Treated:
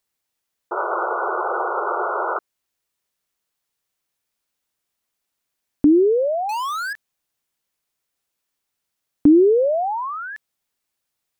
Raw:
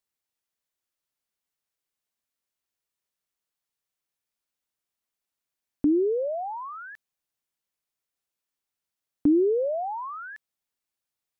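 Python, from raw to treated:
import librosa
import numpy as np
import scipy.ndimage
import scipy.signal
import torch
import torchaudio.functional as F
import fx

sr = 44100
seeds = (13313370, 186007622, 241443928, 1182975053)

y = fx.spec_paint(x, sr, seeds[0], shape='noise', start_s=0.71, length_s=1.68, low_hz=340.0, high_hz=1500.0, level_db=-31.0)
y = fx.power_curve(y, sr, exponent=0.35, at=(6.49, 6.93))
y = y * librosa.db_to_amplitude(8.0)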